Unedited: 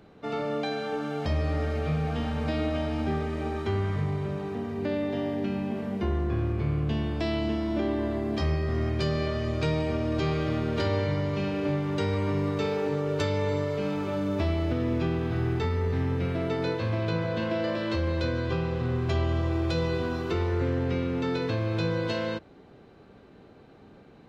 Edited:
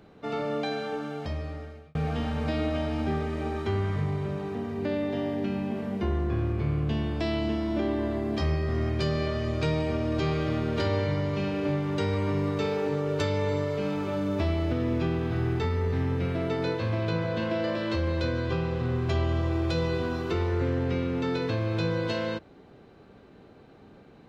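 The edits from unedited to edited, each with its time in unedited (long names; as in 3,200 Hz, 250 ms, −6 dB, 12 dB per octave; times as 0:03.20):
0:00.75–0:01.95: fade out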